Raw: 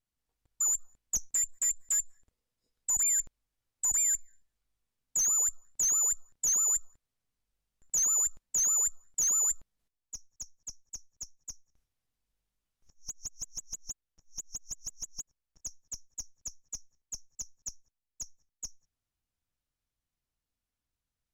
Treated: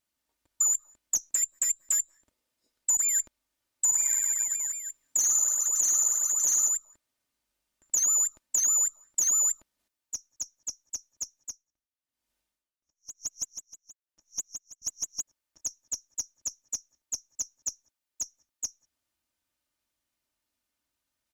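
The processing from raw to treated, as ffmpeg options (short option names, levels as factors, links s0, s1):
-filter_complex "[0:a]asettb=1/sr,asplit=3[s0][s1][s2];[s0]atrim=end=3.844[s3];[s1]atrim=start=3.84:end=6.69,asetpts=PTS-STARTPTS,afade=t=in:d=0.004:c=qsin,afade=t=out:st=2.846:d=0.004:c=qsin,aecho=1:1:50|112.5|190.6|288.3|410.4|562.9|753.7:0.794|0.631|0.501|0.398|0.316|0.251|0.2,atrim=end_sample=125685[s4];[s2]atrim=start=6.686[s5];[s3][s4]acrossfade=d=0.004:c1=hsin:c2=qsin[s6];[s6][s5]acrossfade=d=0.004:c1=qsin:c2=hsin,asettb=1/sr,asplit=3[s7][s8][s9];[s7]atrim=end=11.364[s10];[s8]atrim=start=11.36:end=14.82,asetpts=PTS-STARTPTS,afade=t=in:d=0.004:c=qsin,afade=t=out:st=3.456:d=0.004:c=qsin,aeval=exprs='val(0)*pow(10,-19*(0.5-0.5*cos(2*PI*1*n/s))/20)':c=same[s11];[s9]atrim=start=14.816[s12];[s10][s11]acrossfade=d=0.004:c1=hsin:c2=qsin[s13];[s13][s12]acrossfade=d=0.004:c1=qsin:c2=hsin,highpass=f=270:p=1,aecho=1:1:3.3:0.45,acompressor=threshold=0.0355:ratio=6,volume=2.11"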